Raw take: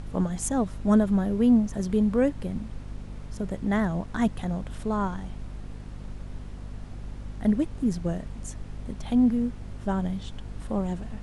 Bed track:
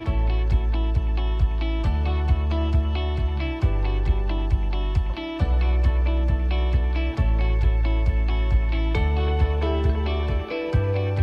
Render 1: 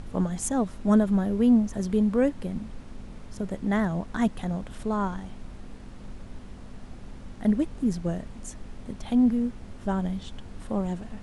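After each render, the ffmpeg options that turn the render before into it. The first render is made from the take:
-af "bandreject=f=50:t=h:w=4,bandreject=f=100:t=h:w=4,bandreject=f=150:t=h:w=4"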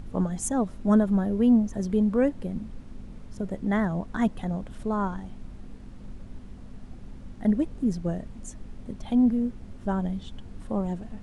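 -af "afftdn=nr=6:nf=-43"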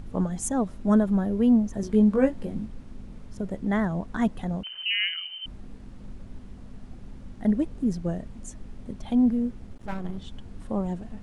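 -filter_complex "[0:a]asettb=1/sr,asplit=3[s0][s1][s2];[s0]atrim=end=1.814[s3];[s1]atrim=start=1.81:end=2.66,asetpts=PTS-STARTPTS,afade=t=in:d=0.004:c=qsin,afade=t=out:st=0.846:d=0.004:c=qsin,asplit=2[s4][s5];[s5]adelay=19,volume=0.668[s6];[s4][s6]amix=inputs=2:normalize=0,atrim=end_sample=37485[s7];[s2]atrim=start=2.656[s8];[s3][s7]acrossfade=d=0.004:c1=hsin:c2=qsin[s9];[s9][s8]acrossfade=d=0.004:c1=qsin:c2=hsin,asettb=1/sr,asplit=3[s10][s11][s12];[s10]atrim=end=4.634[s13];[s11]atrim=start=4.63:end=5.46,asetpts=PTS-STARTPTS,afade=t=in:d=0.004:c=qsin,afade=t=out:st=0.826:d=0.004:c=qsin,lowpass=f=2600:t=q:w=0.5098,lowpass=f=2600:t=q:w=0.6013,lowpass=f=2600:t=q:w=0.9,lowpass=f=2600:t=q:w=2.563,afreqshift=-3100[s14];[s12]atrim=start=5.456[s15];[s13][s14]acrossfade=d=0.004:c1=hsin:c2=qsin[s16];[s16][s15]acrossfade=d=0.004:c1=qsin:c2=hsin,asettb=1/sr,asplit=3[s17][s18][s19];[s17]atrim=end=9.674[s20];[s18]atrim=start=9.67:end=10.18,asetpts=PTS-STARTPTS,afade=t=in:d=0.004:c=qsin,afade=t=out:st=0.506:d=0.004:c=qsin,aeval=exprs='max(val(0),0)':c=same[s21];[s19]atrim=start=10.176[s22];[s20][s21]acrossfade=d=0.004:c1=hsin:c2=qsin[s23];[s23][s22]acrossfade=d=0.004:c1=qsin:c2=hsin"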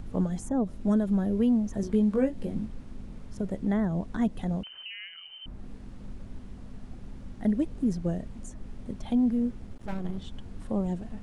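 -filter_complex "[0:a]acrossover=split=720|1800[s0][s1][s2];[s0]acompressor=threshold=0.0891:ratio=4[s3];[s1]acompressor=threshold=0.00355:ratio=4[s4];[s2]acompressor=threshold=0.00447:ratio=4[s5];[s3][s4][s5]amix=inputs=3:normalize=0"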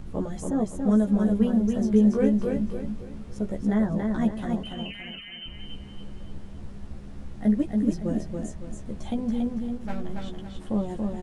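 -filter_complex "[0:a]asplit=2[s0][s1];[s1]adelay=14,volume=0.708[s2];[s0][s2]amix=inputs=2:normalize=0,aecho=1:1:281|562|843|1124|1405:0.631|0.233|0.0864|0.032|0.0118"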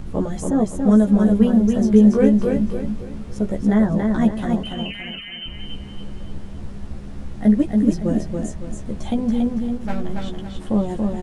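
-af "volume=2.24"

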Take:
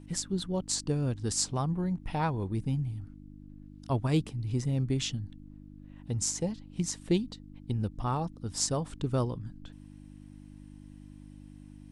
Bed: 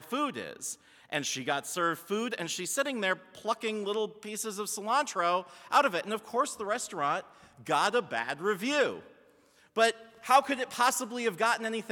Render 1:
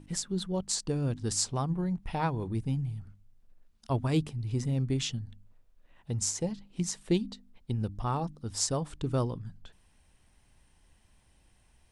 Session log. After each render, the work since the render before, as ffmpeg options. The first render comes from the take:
-af "bandreject=f=50:t=h:w=4,bandreject=f=100:t=h:w=4,bandreject=f=150:t=h:w=4,bandreject=f=200:t=h:w=4,bandreject=f=250:t=h:w=4,bandreject=f=300:t=h:w=4"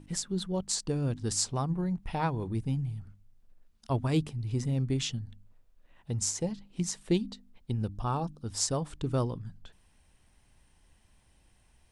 -filter_complex "[0:a]asettb=1/sr,asplit=3[s0][s1][s2];[s0]atrim=end=1.524[s3];[s1]atrim=start=1.52:end=1.98,asetpts=PTS-STARTPTS,afade=t=in:d=0.004:c=qsin,afade=t=out:st=0.456:d=0.004:c=qsin,bandreject=f=3200:w=12[s4];[s2]atrim=start=1.976[s5];[s3][s4]acrossfade=d=0.004:c1=hsin:c2=qsin[s6];[s6][s5]acrossfade=d=0.004:c1=qsin:c2=hsin,asettb=1/sr,asplit=3[s7][s8][s9];[s7]atrim=end=7.934[s10];[s8]atrim=start=7.93:end=8.45,asetpts=PTS-STARTPTS,afade=t=in:d=0.004:c=qsin,afade=t=out:st=0.516:d=0.004:c=qsin,asuperstop=centerf=2000:order=4:qfactor=4.3[s11];[s9]atrim=start=8.446[s12];[s10][s11]acrossfade=d=0.004:c1=hsin:c2=qsin[s13];[s13][s12]acrossfade=d=0.004:c1=qsin:c2=hsin"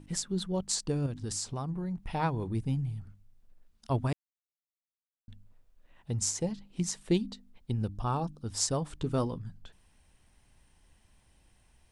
-filter_complex "[0:a]asettb=1/sr,asplit=3[s0][s1][s2];[s0]atrim=end=1.064[s3];[s1]atrim=start=1.06:end=2.15,asetpts=PTS-STARTPTS,afade=t=in:d=0.004:c=qsin,afade=t=out:st=1.086:d=0.004:c=qsin,acompressor=threshold=0.0282:ratio=6:attack=3.2:release=140:knee=1:detection=peak[s4];[s2]atrim=start=2.146[s5];[s3][s4]acrossfade=d=0.004:c1=hsin:c2=qsin[s6];[s6][s5]acrossfade=d=0.004:c1=qsin:c2=hsin,asettb=1/sr,asplit=3[s7][s8][s9];[s7]atrim=end=8.984[s10];[s8]atrim=start=8.98:end=9.38,asetpts=PTS-STARTPTS,afade=t=in:d=0.004:c=qsin,afade=t=out:st=0.396:d=0.004:c=qsin,asplit=2[s11][s12];[s12]adelay=12,volume=0.355[s13];[s11][s13]amix=inputs=2:normalize=0,atrim=end_sample=17640[s14];[s9]atrim=start=9.376[s15];[s10][s14]acrossfade=d=0.004:c1=hsin:c2=qsin[s16];[s16][s15]acrossfade=d=0.004:c1=qsin:c2=hsin,asplit=3[s17][s18][s19];[s17]atrim=end=4.13,asetpts=PTS-STARTPTS,afade=t=out:st=4.126:d=0.004:c=hsin[s20];[s18]atrim=start=4.13:end=5.28,asetpts=PTS-STARTPTS,volume=0[s21];[s19]atrim=start=5.28,asetpts=PTS-STARTPTS,afade=t=in:d=0.004:c=hsin[s22];[s20][s21][s22]concat=n=3:v=0:a=1"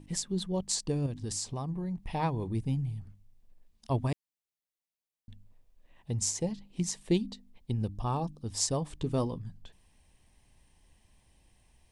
-af "equalizer=f=1400:w=6.2:g=-12.5"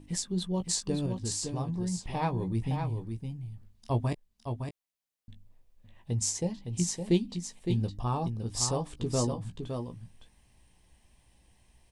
-filter_complex "[0:a]asplit=2[s0][s1];[s1]adelay=17,volume=0.376[s2];[s0][s2]amix=inputs=2:normalize=0,aecho=1:1:562:0.473"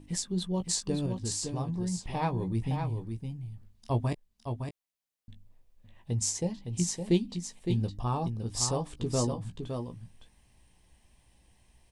-af anull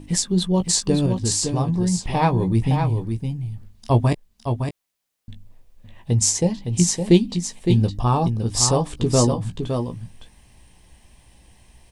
-af "volume=3.76,alimiter=limit=0.708:level=0:latency=1"

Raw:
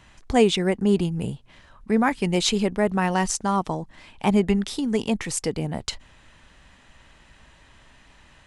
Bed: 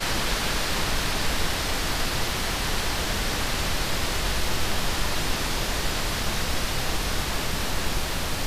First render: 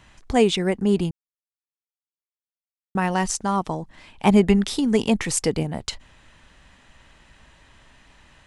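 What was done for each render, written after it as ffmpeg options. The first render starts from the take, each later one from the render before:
-filter_complex "[0:a]asplit=5[s0][s1][s2][s3][s4];[s0]atrim=end=1.11,asetpts=PTS-STARTPTS,afade=t=out:st=1.106:d=0.004:c=hsin[s5];[s1]atrim=start=1.11:end=2.95,asetpts=PTS-STARTPTS,volume=0[s6];[s2]atrim=start=2.95:end=4.252,asetpts=PTS-STARTPTS,afade=t=in:d=0.004:c=hsin[s7];[s3]atrim=start=4.248:end=5.632,asetpts=PTS-STARTPTS,volume=1.58[s8];[s4]atrim=start=5.628[s9];[s5][s6][s7]concat=n=3:v=0:a=1[s10];[s10][s8]acrossfade=d=0.004:c1=hsin:c2=hsin[s11];[s11][s9]acrossfade=d=0.004:c1=hsin:c2=hsin"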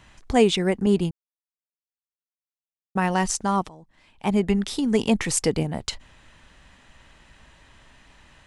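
-filter_complex "[0:a]asettb=1/sr,asplit=3[s0][s1][s2];[s0]atrim=end=0.864[s3];[s1]atrim=start=0.86:end=3.1,asetpts=PTS-STARTPTS,afade=t=in:d=0.004:c=qsin,afade=t=out:st=2.236:d=0.004:c=qsin,agate=range=0.0224:threshold=0.0631:ratio=3:release=100:detection=peak[s4];[s2]atrim=start=3.096[s5];[s3][s4]acrossfade=d=0.004:c1=hsin:c2=qsin[s6];[s6][s5]acrossfade=d=0.004:c1=qsin:c2=hsin,asplit=2[s7][s8];[s7]atrim=end=3.69,asetpts=PTS-STARTPTS,afade=t=out:st=3.686:d=0.004:c=hsin:silence=0.0944061[s9];[s8]atrim=start=3.69,asetpts=PTS-STARTPTS,afade=t=in:d=1.51:silence=0.0944061[s10];[s9][s10]concat=n=2:v=0:a=1"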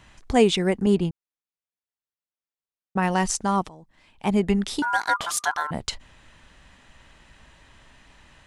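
-filter_complex "[0:a]asettb=1/sr,asplit=3[s0][s1][s2];[s0]atrim=end=0.954[s3];[s1]atrim=start=0.95:end=3.03,asetpts=PTS-STARTPTS,afade=t=in:d=0.004:c=qsin,afade=t=out:st=2.076:d=0.004:c=qsin,lowpass=f=3600:p=1[s4];[s2]atrim=start=3.026[s5];[s3][s4]acrossfade=d=0.004:c1=hsin:c2=qsin[s6];[s6][s5]acrossfade=d=0.004:c1=qsin:c2=hsin,asettb=1/sr,asplit=3[s7][s8][s9];[s7]atrim=end=4.824[s10];[s8]atrim=start=4.82:end=5.71,asetpts=PTS-STARTPTS,afade=t=in:d=0.004:c=qsin,afade=t=out:st=0.886:d=0.004:c=qsin,aeval=exprs='val(0)*sin(2*PI*1200*n/s)':c=same[s11];[s9]atrim=start=5.706[s12];[s10][s11]acrossfade=d=0.004:c1=hsin:c2=qsin[s13];[s13][s12]acrossfade=d=0.004:c1=qsin:c2=hsin"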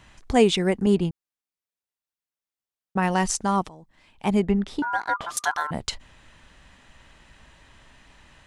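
-filter_complex "[0:a]asettb=1/sr,asplit=3[s0][s1][s2];[s0]atrim=end=4.424[s3];[s1]atrim=start=4.42:end=5.37,asetpts=PTS-STARTPTS,afade=t=in:d=0.004:c=qsin,afade=t=out:st=0.946:d=0.004:c=qsin,lowpass=f=1300:p=1[s4];[s2]atrim=start=5.366[s5];[s3][s4]acrossfade=d=0.004:c1=hsin:c2=qsin[s6];[s6][s5]acrossfade=d=0.004:c1=qsin:c2=hsin"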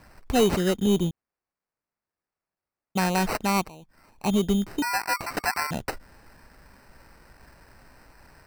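-af "acrusher=samples=13:mix=1:aa=0.000001,asoftclip=type=tanh:threshold=0.224"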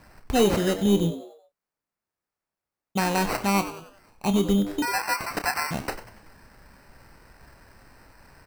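-filter_complex "[0:a]asplit=2[s0][s1];[s1]adelay=30,volume=0.299[s2];[s0][s2]amix=inputs=2:normalize=0,asplit=5[s3][s4][s5][s6][s7];[s4]adelay=94,afreqshift=100,volume=0.224[s8];[s5]adelay=188,afreqshift=200,volume=0.0923[s9];[s6]adelay=282,afreqshift=300,volume=0.0376[s10];[s7]adelay=376,afreqshift=400,volume=0.0155[s11];[s3][s8][s9][s10][s11]amix=inputs=5:normalize=0"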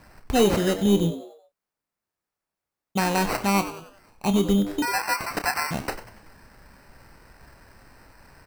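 -af "volume=1.12"

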